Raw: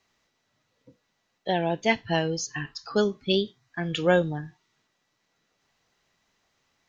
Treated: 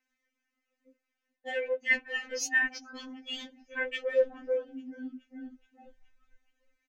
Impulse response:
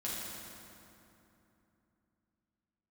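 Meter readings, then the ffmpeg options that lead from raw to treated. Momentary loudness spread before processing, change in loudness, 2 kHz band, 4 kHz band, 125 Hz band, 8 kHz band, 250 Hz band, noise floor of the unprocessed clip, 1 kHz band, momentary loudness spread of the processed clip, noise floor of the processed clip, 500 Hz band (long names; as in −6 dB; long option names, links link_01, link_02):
12 LU, −4.5 dB, +2.5 dB, −8.0 dB, below −40 dB, can't be measured, −13.5 dB, −75 dBFS, −15.5 dB, 18 LU, below −85 dBFS, −5.0 dB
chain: -filter_complex "[0:a]asplit=7[link_01][link_02][link_03][link_04][link_05][link_06][link_07];[link_02]adelay=423,afreqshift=-31,volume=-20dB[link_08];[link_03]adelay=846,afreqshift=-62,volume=-23.9dB[link_09];[link_04]adelay=1269,afreqshift=-93,volume=-27.8dB[link_10];[link_05]adelay=1692,afreqshift=-124,volume=-31.6dB[link_11];[link_06]adelay=2115,afreqshift=-155,volume=-35.5dB[link_12];[link_07]adelay=2538,afreqshift=-186,volume=-39.4dB[link_13];[link_01][link_08][link_09][link_10][link_11][link_12][link_13]amix=inputs=7:normalize=0,acrossover=split=230[link_14][link_15];[link_14]alimiter=level_in=7dB:limit=-24dB:level=0:latency=1,volume=-7dB[link_16];[link_16][link_15]amix=inputs=2:normalize=0,afwtdn=0.00891,areverse,acompressor=threshold=-31dB:ratio=12,areverse,equalizer=frequency=1000:width_type=o:width=1:gain=-9,equalizer=frequency=2000:width_type=o:width=1:gain=11,equalizer=frequency=4000:width_type=o:width=1:gain=-10,afftfilt=real='re*3.46*eq(mod(b,12),0)':imag='im*3.46*eq(mod(b,12),0)':win_size=2048:overlap=0.75,volume=8.5dB"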